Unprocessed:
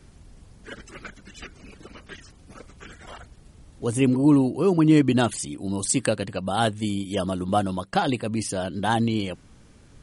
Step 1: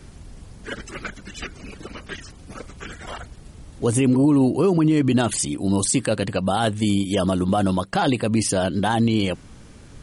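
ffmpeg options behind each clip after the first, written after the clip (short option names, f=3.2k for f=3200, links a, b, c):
-af "alimiter=limit=-18.5dB:level=0:latency=1:release=50,volume=7.5dB"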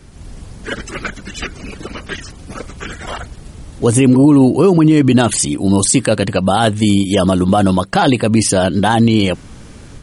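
-af "dynaudnorm=f=120:g=3:m=7dB,volume=1.5dB"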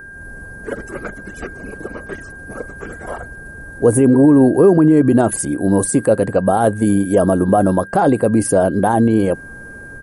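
-af "aeval=exprs='val(0)+0.0562*sin(2*PI*1600*n/s)':c=same,firequalizer=gain_entry='entry(110,0);entry(480,8);entry(850,3);entry(3100,-17);entry(7800,-6);entry(11000,8)':delay=0.05:min_phase=1,volume=-5dB"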